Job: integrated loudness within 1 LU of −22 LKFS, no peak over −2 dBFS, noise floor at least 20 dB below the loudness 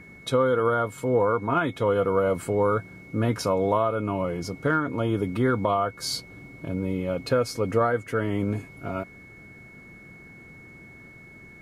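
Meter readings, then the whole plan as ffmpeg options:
interfering tone 2,200 Hz; level of the tone −47 dBFS; integrated loudness −25.5 LKFS; sample peak −10.0 dBFS; target loudness −22.0 LKFS
→ -af "bandreject=frequency=2200:width=30"
-af "volume=3.5dB"

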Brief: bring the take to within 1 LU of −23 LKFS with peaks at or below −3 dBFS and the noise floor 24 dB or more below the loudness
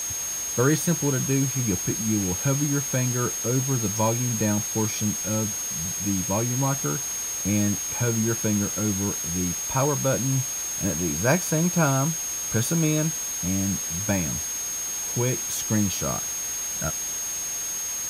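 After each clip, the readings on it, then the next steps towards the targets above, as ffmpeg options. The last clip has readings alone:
interfering tone 6,500 Hz; level of the tone −28 dBFS; background noise floor −30 dBFS; target noise floor −48 dBFS; integrated loudness −24.0 LKFS; sample peak −8.5 dBFS; target loudness −23.0 LKFS
→ -af "bandreject=frequency=6500:width=30"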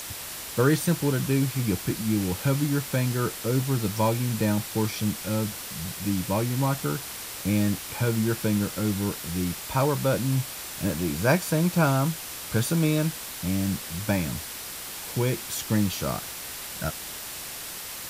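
interfering tone none found; background noise floor −37 dBFS; target noise floor −51 dBFS
→ -af "afftdn=noise_reduction=14:noise_floor=-37"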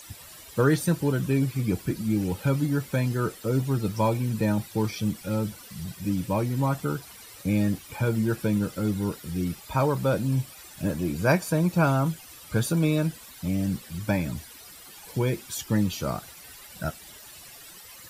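background noise floor −47 dBFS; target noise floor −51 dBFS
→ -af "afftdn=noise_reduction=6:noise_floor=-47"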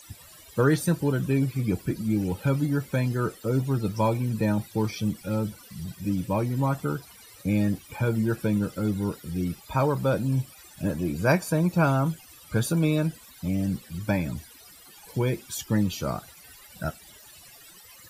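background noise floor −50 dBFS; target noise floor −51 dBFS
→ -af "afftdn=noise_reduction=6:noise_floor=-50"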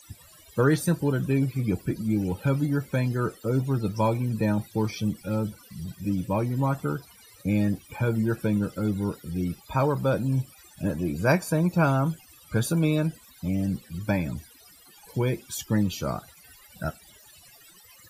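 background noise floor −53 dBFS; integrated loudness −27.0 LKFS; sample peak −8.5 dBFS; target loudness −23.0 LKFS
→ -af "volume=4dB"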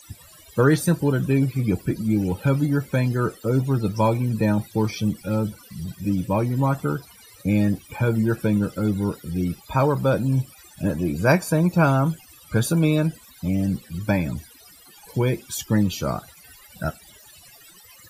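integrated loudness −23.0 LKFS; sample peak −4.5 dBFS; background noise floor −49 dBFS

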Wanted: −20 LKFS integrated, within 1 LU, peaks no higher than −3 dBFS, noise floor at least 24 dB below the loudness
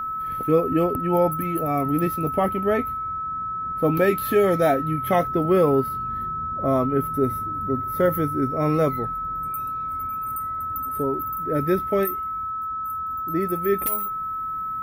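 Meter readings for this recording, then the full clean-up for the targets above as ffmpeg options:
interfering tone 1,300 Hz; level of the tone −26 dBFS; integrated loudness −23.5 LKFS; sample peak −8.5 dBFS; target loudness −20.0 LKFS
→ -af "bandreject=frequency=1300:width=30"
-af "volume=3.5dB"

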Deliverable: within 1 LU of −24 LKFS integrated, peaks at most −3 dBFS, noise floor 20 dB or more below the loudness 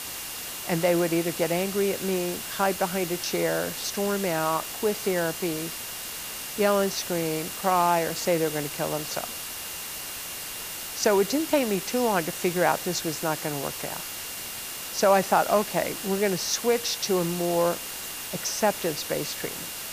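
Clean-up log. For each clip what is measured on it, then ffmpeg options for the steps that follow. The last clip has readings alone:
interfering tone 2,800 Hz; level of the tone −46 dBFS; background noise floor −36 dBFS; target noise floor −47 dBFS; integrated loudness −26.5 LKFS; sample peak −7.0 dBFS; target loudness −24.0 LKFS
→ -af "bandreject=frequency=2800:width=30"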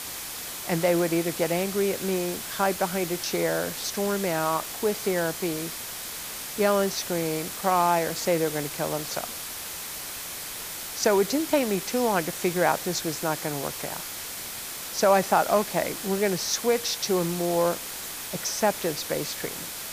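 interfering tone none found; background noise floor −36 dBFS; target noise floor −47 dBFS
→ -af "afftdn=noise_reduction=11:noise_floor=-36"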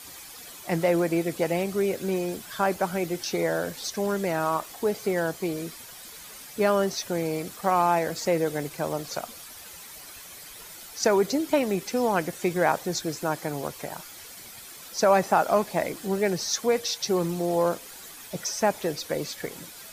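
background noise floor −44 dBFS; target noise floor −47 dBFS
→ -af "afftdn=noise_reduction=6:noise_floor=-44"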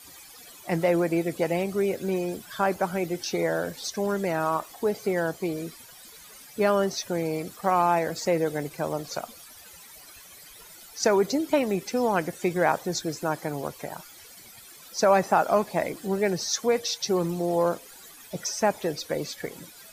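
background noise floor −48 dBFS; integrated loudness −26.5 LKFS; sample peak −7.5 dBFS; target loudness −24.0 LKFS
→ -af "volume=2.5dB"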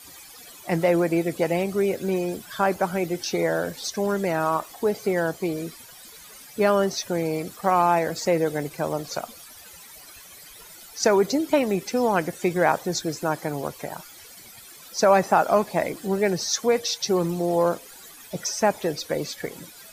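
integrated loudness −24.0 LKFS; sample peak −5.0 dBFS; background noise floor −46 dBFS

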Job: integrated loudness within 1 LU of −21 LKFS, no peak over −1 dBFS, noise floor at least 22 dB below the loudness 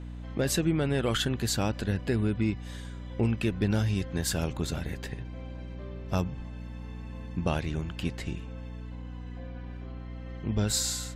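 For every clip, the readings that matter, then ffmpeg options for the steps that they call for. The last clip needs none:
mains hum 60 Hz; hum harmonics up to 300 Hz; level of the hum −37 dBFS; integrated loudness −30.5 LKFS; sample peak −15.0 dBFS; target loudness −21.0 LKFS
→ -af "bandreject=frequency=60:width_type=h:width=6,bandreject=frequency=120:width_type=h:width=6,bandreject=frequency=180:width_type=h:width=6,bandreject=frequency=240:width_type=h:width=6,bandreject=frequency=300:width_type=h:width=6"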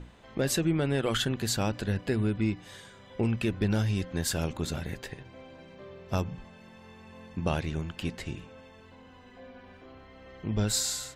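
mains hum none found; integrated loudness −30.5 LKFS; sample peak −15.5 dBFS; target loudness −21.0 LKFS
→ -af "volume=9.5dB"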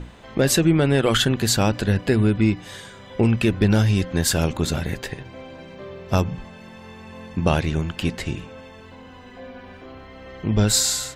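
integrated loudness −21.0 LKFS; sample peak −6.0 dBFS; background noise floor −43 dBFS

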